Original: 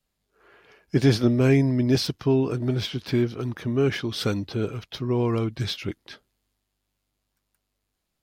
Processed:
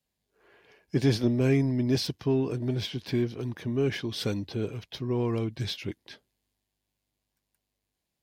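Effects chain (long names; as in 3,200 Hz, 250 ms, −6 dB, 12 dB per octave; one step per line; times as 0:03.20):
high-pass filter 52 Hz
parametric band 1,300 Hz −10.5 dB 0.24 octaves
in parallel at −11.5 dB: soft clipping −24.5 dBFS, distortion −7 dB
on the sum: level −5.5 dB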